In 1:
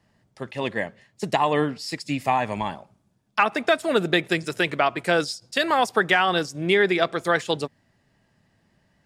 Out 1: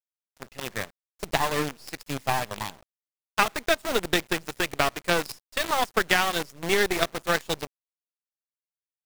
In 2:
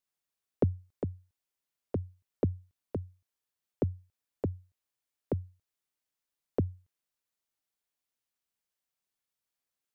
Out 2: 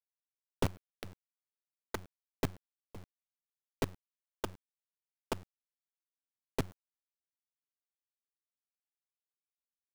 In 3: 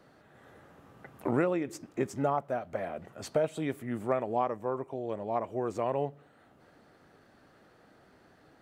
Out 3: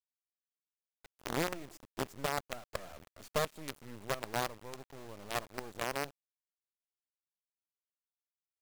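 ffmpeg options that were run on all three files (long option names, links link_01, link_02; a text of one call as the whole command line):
ffmpeg -i in.wav -af "aeval=exprs='0.596*(cos(1*acos(clip(val(0)/0.596,-1,1)))-cos(1*PI/2))+0.15*(cos(3*acos(clip(val(0)/0.596,-1,1)))-cos(3*PI/2))+0.00944*(cos(5*acos(clip(val(0)/0.596,-1,1)))-cos(5*PI/2))+0.0119*(cos(6*acos(clip(val(0)/0.596,-1,1)))-cos(6*PI/2))+0.0376*(cos(8*acos(clip(val(0)/0.596,-1,1)))-cos(8*PI/2))':channel_layout=same,acrusher=bits=6:dc=4:mix=0:aa=0.000001,volume=2.5dB" out.wav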